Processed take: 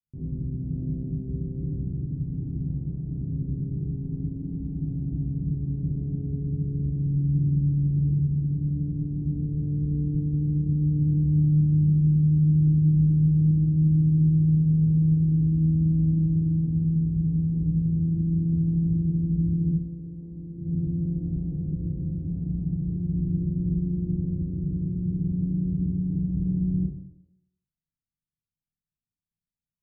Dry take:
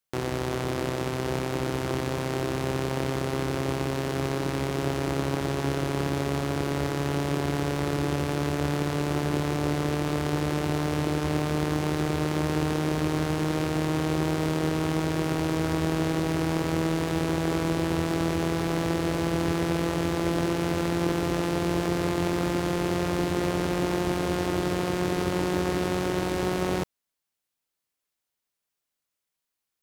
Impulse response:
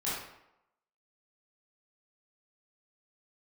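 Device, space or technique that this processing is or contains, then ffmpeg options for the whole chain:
club heard from the street: -filter_complex "[0:a]asettb=1/sr,asplit=3[link_01][link_02][link_03];[link_01]atrim=end=19.714[link_04];[link_02]atrim=start=19.71:end=20.58,asetpts=PTS-STARTPTS,afade=type=in:duration=0.004:curve=qsin,afade=type=out:start_time=0.866:duration=0.004:curve=qsin,bass=frequency=250:gain=-10,treble=frequency=4000:gain=12[link_05];[link_03]atrim=start=20.576[link_06];[link_04][link_05]acrossfade=duration=0.004:curve1=hsin:curve2=qsin[link_07];[link_07][link_06]acrossfade=duration=0.004:curve1=qsin:curve2=hsin,alimiter=limit=-16dB:level=0:latency=1:release=66,lowpass=frequency=190:width=0.5412,lowpass=frequency=190:width=1.3066[link_08];[1:a]atrim=start_sample=2205[link_09];[link_08][link_09]afir=irnorm=-1:irlink=0,volume=2.5dB"

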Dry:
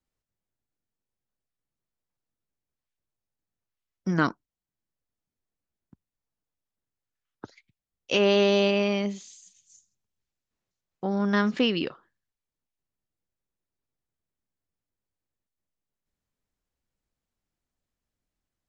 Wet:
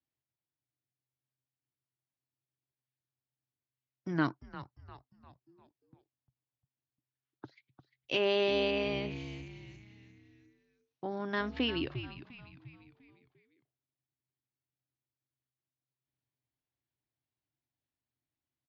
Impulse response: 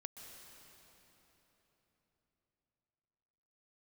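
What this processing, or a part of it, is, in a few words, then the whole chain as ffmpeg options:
frequency-shifting delay pedal into a guitar cabinet: -filter_complex "[0:a]asplit=6[link_01][link_02][link_03][link_04][link_05][link_06];[link_02]adelay=350,afreqshift=-130,volume=-12dB[link_07];[link_03]adelay=700,afreqshift=-260,volume=-18.9dB[link_08];[link_04]adelay=1050,afreqshift=-390,volume=-25.9dB[link_09];[link_05]adelay=1400,afreqshift=-520,volume=-32.8dB[link_10];[link_06]adelay=1750,afreqshift=-650,volume=-39.7dB[link_11];[link_01][link_07][link_08][link_09][link_10][link_11]amix=inputs=6:normalize=0,highpass=95,equalizer=frequency=130:width_type=q:width=4:gain=8,equalizer=frequency=200:width_type=q:width=4:gain=-10,equalizer=frequency=310:width_type=q:width=4:gain=4,equalizer=frequency=490:width_type=q:width=4:gain=-7,equalizer=frequency=1300:width_type=q:width=4:gain=-5,lowpass=frequency=4500:width=0.5412,lowpass=frequency=4500:width=1.3066,volume=-6dB"

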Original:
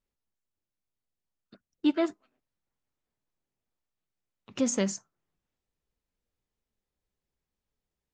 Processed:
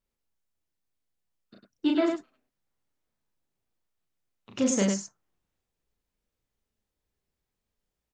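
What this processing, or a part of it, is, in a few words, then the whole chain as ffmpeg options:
slapback doubling: -filter_complex "[0:a]asplit=3[link_01][link_02][link_03];[link_02]adelay=35,volume=-3dB[link_04];[link_03]adelay=101,volume=-5dB[link_05];[link_01][link_04][link_05]amix=inputs=3:normalize=0"

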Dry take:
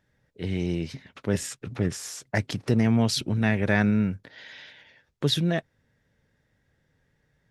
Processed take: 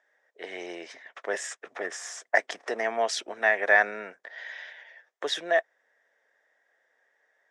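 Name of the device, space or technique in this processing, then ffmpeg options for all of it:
phone speaker on a table: -af "highpass=frequency=460:width=0.5412,highpass=frequency=460:width=1.3066,equalizer=frequency=690:width_type=q:width=4:gain=9,equalizer=frequency=1100:width_type=q:width=4:gain=3,equalizer=frequency=1800:width_type=q:width=4:gain=9,equalizer=frequency=2700:width_type=q:width=4:gain=-4,equalizer=frequency=4300:width_type=q:width=4:gain=-9,lowpass=frequency=8100:width=0.5412,lowpass=frequency=8100:width=1.3066"

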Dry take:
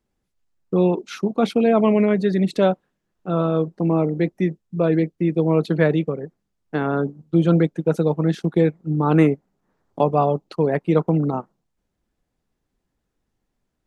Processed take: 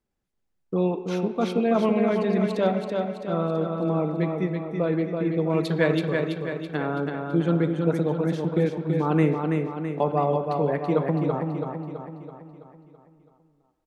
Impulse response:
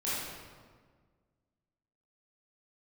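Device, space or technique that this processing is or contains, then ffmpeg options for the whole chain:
filtered reverb send: -filter_complex "[0:a]asplit=2[link_01][link_02];[link_02]highpass=370,lowpass=3600[link_03];[1:a]atrim=start_sample=2205[link_04];[link_03][link_04]afir=irnorm=-1:irlink=0,volume=-14.5dB[link_05];[link_01][link_05]amix=inputs=2:normalize=0,asettb=1/sr,asplit=3[link_06][link_07][link_08];[link_06]atrim=end=5.504[link_09];[link_07]atrim=start=5.5:end=6.77,asetpts=PTS-STARTPTS,afade=type=in:duration=0.004:curve=qsin,afade=type=out:start_time=1.266:duration=0.004:curve=qsin,highshelf=frequency=2600:gain=11.5[link_10];[link_08]atrim=start=6.766[link_11];[link_09][link_10]acrossfade=duration=0.004:curve1=hsin:curve2=qsin[link_12];[link_12][link_11]acrossfade=duration=0.004:curve1=qsin:curve2=hsin,aecho=1:1:330|660|990|1320|1650|1980|2310:0.596|0.31|0.161|0.0838|0.0436|0.0226|0.0118,volume=-6dB"

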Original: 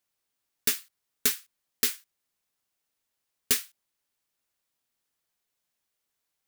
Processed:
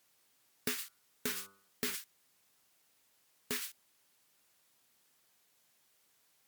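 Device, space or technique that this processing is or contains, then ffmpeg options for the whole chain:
podcast mastering chain: -filter_complex "[0:a]asettb=1/sr,asplit=3[link_01][link_02][link_03];[link_01]atrim=end=0.774[link_04];[link_02]atrim=start=0.77:end=1.95,asetpts=PTS-STARTPTS,afade=type=in:duration=0.004:curve=qsin,afade=type=out:start_time=1.176:duration=0.004:curve=qsin,bandreject=frequency=98.11:width_type=h:width=4,bandreject=frequency=196.22:width_type=h:width=4,bandreject=frequency=294.33:width_type=h:width=4,bandreject=frequency=392.44:width_type=h:width=4,bandreject=frequency=490.55:width_type=h:width=4,bandreject=frequency=588.66:width_type=h:width=4,bandreject=frequency=686.77:width_type=h:width=4,bandreject=frequency=784.88:width_type=h:width=4,bandreject=frequency=882.99:width_type=h:width=4,bandreject=frequency=981.1:width_type=h:width=4,bandreject=frequency=1079.21:width_type=h:width=4,bandreject=frequency=1177.32:width_type=h:width=4,bandreject=frequency=1275.43:width_type=h:width=4,bandreject=frequency=1373.54:width_type=h:width=4,bandreject=frequency=1471.65:width_type=h:width=4[link_05];[link_03]atrim=start=1.946[link_06];[link_04][link_05]acrossfade=duration=0.004:curve1=hsin:curve2=qsin[link_07];[link_07][link_06]acrossfade=duration=0.004:curve1=qsin:curve2=hsin,highpass=96,deesser=0.75,acompressor=threshold=-36dB:ratio=3,alimiter=level_in=5.5dB:limit=-24dB:level=0:latency=1:release=57,volume=-5.5dB,volume=11dB" -ar 48000 -c:a libmp3lame -b:a 112k

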